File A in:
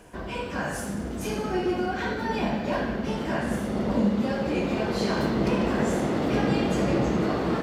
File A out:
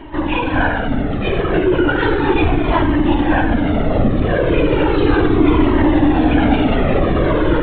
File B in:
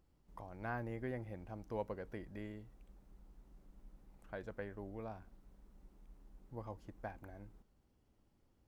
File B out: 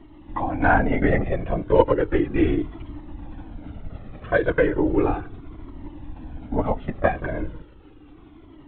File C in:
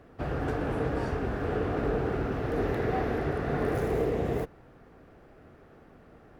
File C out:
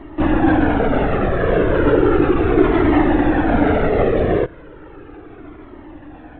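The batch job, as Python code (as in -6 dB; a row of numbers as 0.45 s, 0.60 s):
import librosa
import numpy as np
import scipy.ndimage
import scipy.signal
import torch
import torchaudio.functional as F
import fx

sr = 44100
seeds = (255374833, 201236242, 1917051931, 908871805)

p1 = fx.rider(x, sr, range_db=4, speed_s=0.5)
p2 = x + (p1 * 10.0 ** (-2.5 / 20.0))
p3 = 10.0 ** (-16.0 / 20.0) * np.tanh(p2 / 10.0 ** (-16.0 / 20.0))
p4 = fx.low_shelf(p3, sr, hz=200.0, db=-6.0)
p5 = fx.lpc_vocoder(p4, sr, seeds[0], excitation='whisper', order=16)
p6 = fx.peak_eq(p5, sr, hz=300.0, db=13.5, octaves=0.34)
p7 = fx.comb_cascade(p6, sr, direction='falling', hz=0.35)
y = p7 * 10.0 ** (-1.5 / 20.0) / np.max(np.abs(p7))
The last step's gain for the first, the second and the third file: +12.5 dB, +24.0 dB, +14.5 dB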